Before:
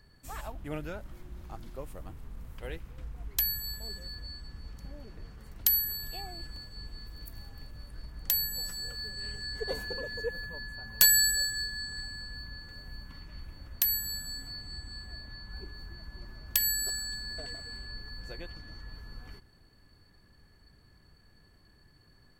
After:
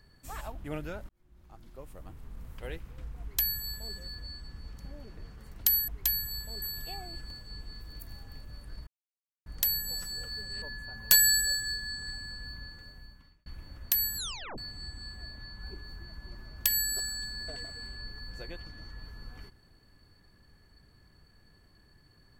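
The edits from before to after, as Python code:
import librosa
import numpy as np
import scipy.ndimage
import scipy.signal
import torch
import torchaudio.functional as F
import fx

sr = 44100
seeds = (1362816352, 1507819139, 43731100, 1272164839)

y = fx.edit(x, sr, fx.fade_in_span(start_s=1.09, length_s=1.36),
    fx.duplicate(start_s=3.21, length_s=0.74, to_s=5.88),
    fx.insert_silence(at_s=8.13, length_s=0.59),
    fx.cut(start_s=9.29, length_s=1.23),
    fx.fade_out_span(start_s=12.51, length_s=0.85),
    fx.tape_stop(start_s=14.07, length_s=0.41), tone=tone)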